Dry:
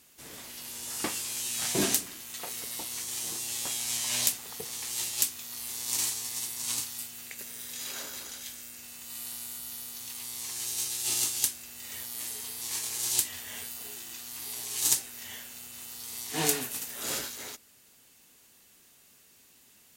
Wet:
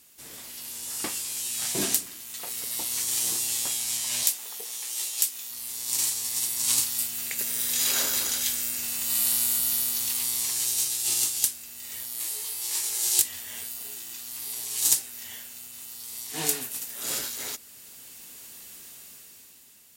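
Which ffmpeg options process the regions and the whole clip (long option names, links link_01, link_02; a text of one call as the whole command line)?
ffmpeg -i in.wav -filter_complex "[0:a]asettb=1/sr,asplit=3[link_01][link_02][link_03];[link_01]atrim=end=4.234[link_04];[link_02]atrim=start=4.23:end=5.51,asetpts=PTS-STARTPTS,afade=type=in:duration=0.004:curve=qsin,afade=type=out:start_time=1.276:duration=0.004:curve=qsin,highpass=380,acompressor=mode=upward:threshold=-33dB:ratio=2.5:attack=3.2:release=140:knee=2.83:detection=peak,asplit=2[link_05][link_06];[link_06]adelay=17,volume=-8dB[link_07];[link_05][link_07]amix=inputs=2:normalize=0,atrim=end_sample=56448[link_08];[link_03]atrim=start=5.506[link_09];[link_04][link_08]acrossfade=duration=0.004:curve1=hsin:curve2=qsin[link_10];[link_10][link_09]acrossfade=duration=0.004:curve1=qsin:curve2=hsin,asettb=1/sr,asplit=3[link_11][link_12][link_13];[link_11]atrim=end=12.184[link_14];[link_12]atrim=start=12.18:end=13.22,asetpts=PTS-STARTPTS,afade=type=in:duration=0.004:curve=qsin,afade=type=out:start_time=1.036:duration=0.004:curve=qsin,highpass=42,bandreject=frequency=60:width_type=h:width=6,bandreject=frequency=120:width_type=h:width=6,bandreject=frequency=180:width_type=h:width=6,bandreject=frequency=240:width_type=h:width=6,asplit=2[link_15][link_16];[link_16]adelay=19,volume=-2dB[link_17];[link_15][link_17]amix=inputs=2:normalize=0,atrim=end_sample=45864[link_18];[link_13]atrim=start=13.216[link_19];[link_14][link_18]acrossfade=duration=0.004:curve1=hsin:curve2=qsin[link_20];[link_20][link_19]acrossfade=duration=0.004:curve1=qsin:curve2=hsin,highshelf=frequency=4100:gain=6.5,bandreject=frequency=6300:width=26,dynaudnorm=framelen=220:gausssize=9:maxgain=11.5dB,volume=-1.5dB" out.wav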